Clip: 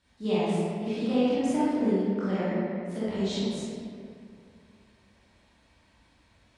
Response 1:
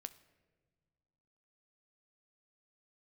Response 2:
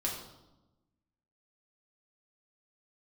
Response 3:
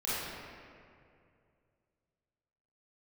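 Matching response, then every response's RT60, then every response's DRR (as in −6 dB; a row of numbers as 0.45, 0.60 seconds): 3; non-exponential decay, 1.0 s, 2.4 s; 11.5, −3.0, −11.5 decibels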